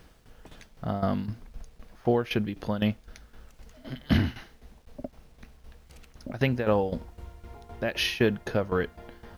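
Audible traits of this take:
tremolo saw down 3.9 Hz, depth 80%
a quantiser's noise floor 12 bits, dither none

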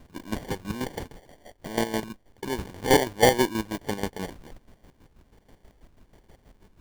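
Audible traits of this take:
chopped level 6.2 Hz, depth 65%, duty 40%
phaser sweep stages 6, 1.3 Hz, lowest notch 630–2,300 Hz
aliases and images of a low sample rate 1,300 Hz, jitter 0%

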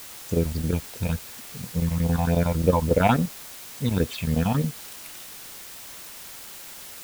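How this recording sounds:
phaser sweep stages 6, 3.5 Hz, lowest notch 380–1,700 Hz
chopped level 11 Hz, depth 65%, duty 80%
a quantiser's noise floor 8 bits, dither triangular

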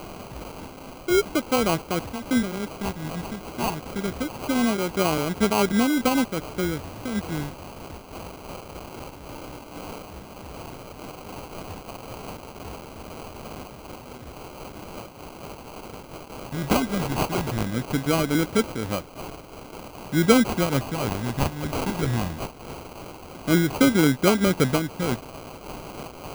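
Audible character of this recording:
a quantiser's noise floor 6 bits, dither triangular
phaser sweep stages 2, 0.22 Hz, lowest notch 470–3,400 Hz
aliases and images of a low sample rate 1,800 Hz, jitter 0%
amplitude modulation by smooth noise

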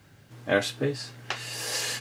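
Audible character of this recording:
a quantiser's noise floor 12 bits, dither triangular

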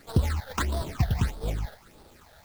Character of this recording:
aliases and images of a low sample rate 2,900 Hz, jitter 20%
phaser sweep stages 8, 1.6 Hz, lowest notch 310–2,300 Hz
a quantiser's noise floor 10 bits, dither none

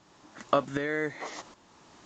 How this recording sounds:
a quantiser's noise floor 10 bits, dither triangular
tremolo saw up 1.3 Hz, depth 70%
AAC

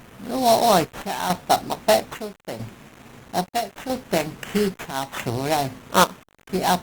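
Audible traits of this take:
aliases and images of a low sample rate 4,800 Hz, jitter 20%
chopped level 0.77 Hz, depth 65%, duty 65%
a quantiser's noise floor 8 bits, dither none
Opus

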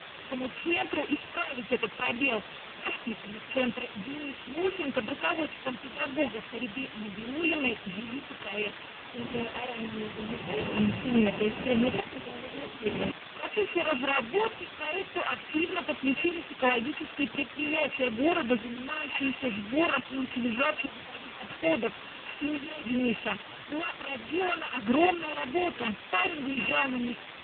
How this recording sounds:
a buzz of ramps at a fixed pitch in blocks of 16 samples
sample-and-hold tremolo, depth 85%
a quantiser's noise floor 6 bits, dither triangular
AMR narrowband

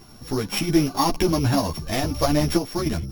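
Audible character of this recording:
a buzz of ramps at a fixed pitch in blocks of 8 samples
sample-and-hold tremolo
a shimmering, thickened sound

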